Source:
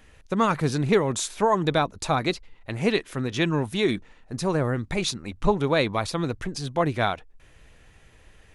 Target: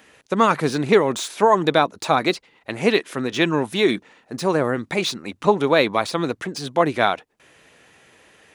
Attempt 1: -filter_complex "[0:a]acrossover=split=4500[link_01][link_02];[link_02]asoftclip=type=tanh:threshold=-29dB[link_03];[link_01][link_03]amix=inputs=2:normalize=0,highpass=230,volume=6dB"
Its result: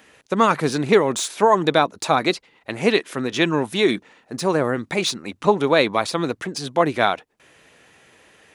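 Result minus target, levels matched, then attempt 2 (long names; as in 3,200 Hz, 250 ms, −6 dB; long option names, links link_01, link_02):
soft clipping: distortion −7 dB
-filter_complex "[0:a]acrossover=split=4500[link_01][link_02];[link_02]asoftclip=type=tanh:threshold=-38dB[link_03];[link_01][link_03]amix=inputs=2:normalize=0,highpass=230,volume=6dB"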